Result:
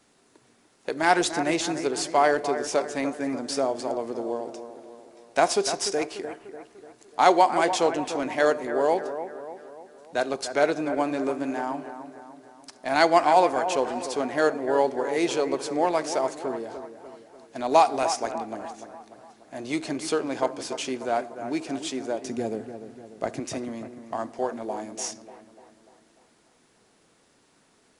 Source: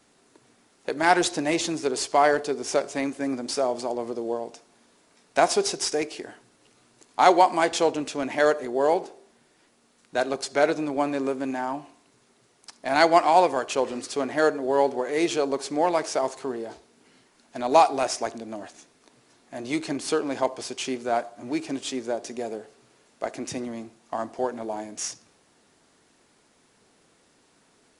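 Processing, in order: 22.24–23.4 bell 120 Hz +12.5 dB 2.3 oct; analogue delay 0.295 s, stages 4096, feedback 51%, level -10.5 dB; gain -1 dB

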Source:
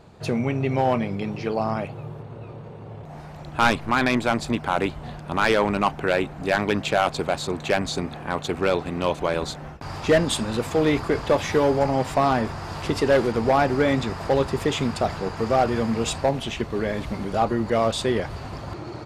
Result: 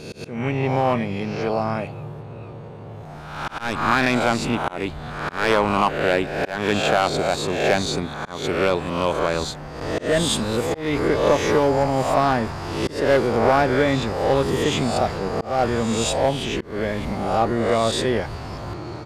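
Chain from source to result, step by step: spectral swells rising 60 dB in 0.87 s; auto swell 0.234 s

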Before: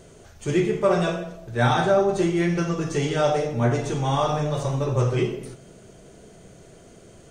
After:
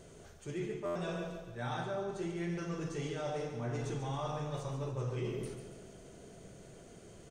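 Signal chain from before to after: reverse; compressor 5:1, threshold -30 dBFS, peak gain reduction 14 dB; reverse; feedback echo 0.141 s, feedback 50%, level -8.5 dB; stuck buffer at 0.85, samples 512, times 8; gain -6.5 dB

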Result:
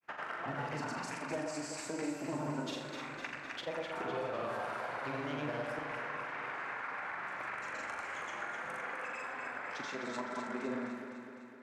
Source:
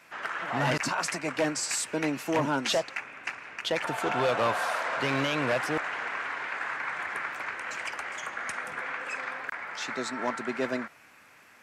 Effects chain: expander -43 dBFS; grains, pitch spread up and down by 0 st; flutter echo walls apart 7 m, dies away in 0.4 s; compressor 6:1, threshold -40 dBFS, peak gain reduction 17 dB; high shelf 2200 Hz -9 dB; on a send: echo with dull and thin repeats by turns 0.127 s, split 960 Hz, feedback 77%, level -4.5 dB; on the sum: gain +3.5 dB

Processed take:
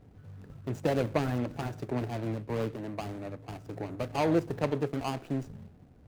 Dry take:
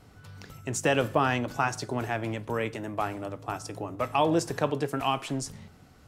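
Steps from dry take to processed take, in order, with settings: median filter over 41 samples; 1.91–3.67 three-band expander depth 40%

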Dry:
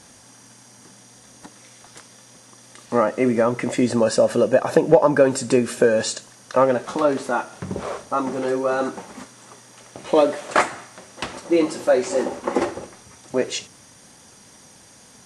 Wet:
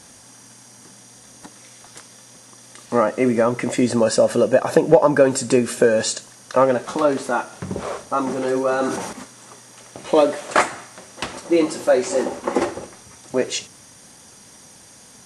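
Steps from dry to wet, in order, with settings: high shelf 7700 Hz +5 dB; 8.2–9.13 sustainer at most 43 dB/s; gain +1 dB

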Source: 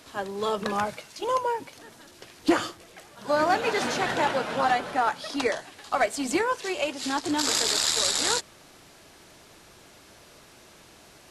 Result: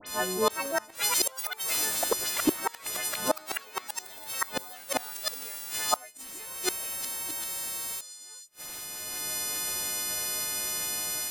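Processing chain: frequency quantiser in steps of 3 st; high shelf 8100 Hz +11 dB; AGC gain up to 8.5 dB; crackle 160/s -28 dBFS; dispersion highs, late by 67 ms, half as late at 2400 Hz; flipped gate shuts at -11 dBFS, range -34 dB; echoes that change speed 0.463 s, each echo +7 st, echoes 3

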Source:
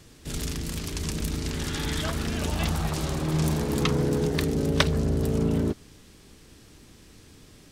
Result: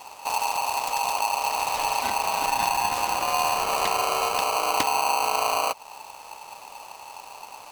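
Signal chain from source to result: low shelf 120 Hz +9.5 dB; compressor 2:1, threshold -31 dBFS, peak gain reduction 10 dB; polarity switched at an audio rate 880 Hz; gain +4 dB

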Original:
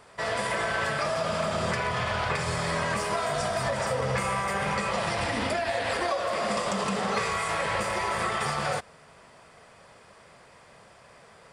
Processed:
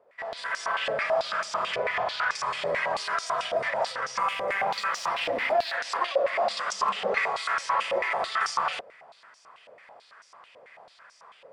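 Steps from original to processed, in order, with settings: AGC gain up to 10.5 dB; 4.19–5.75 added noise violet -35 dBFS; stepped band-pass 9.1 Hz 540–5700 Hz

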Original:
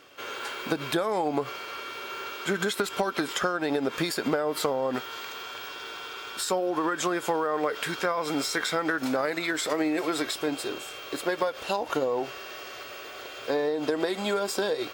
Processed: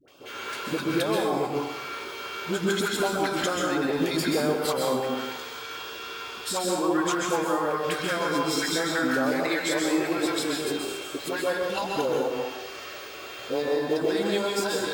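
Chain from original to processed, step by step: LFO notch sine 2.1 Hz 430–2000 Hz; dispersion highs, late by 80 ms, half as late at 710 Hz; short-mantissa float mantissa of 4-bit; plate-style reverb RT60 0.93 s, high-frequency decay 0.75×, pre-delay 0.115 s, DRR -0.5 dB

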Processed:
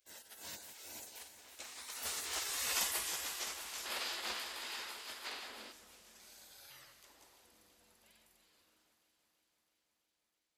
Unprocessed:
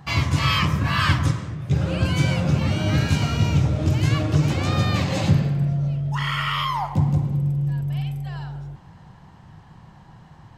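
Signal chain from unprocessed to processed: Doppler pass-by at 2.73, 22 m/s, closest 4.6 m; RIAA curve recording; spectral gate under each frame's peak -20 dB weak; on a send: echo with dull and thin repeats by turns 0.165 s, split 2200 Hz, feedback 87%, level -10.5 dB; on the sum: spectral gain 3.86–5.72, 210–5200 Hz +9 dB; gain +3 dB

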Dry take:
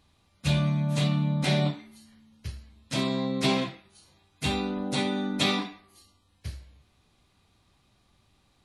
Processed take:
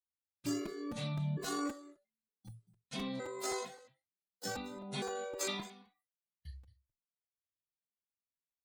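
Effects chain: trilling pitch shifter +11.5 st, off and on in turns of 0.456 s; spectral noise reduction 20 dB; gate -54 dBFS, range -16 dB; echo 0.223 s -19.5 dB; crackling interface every 0.26 s, samples 256, repeat, from 0.65; endless flanger 2.4 ms +1.4 Hz; gain -8.5 dB

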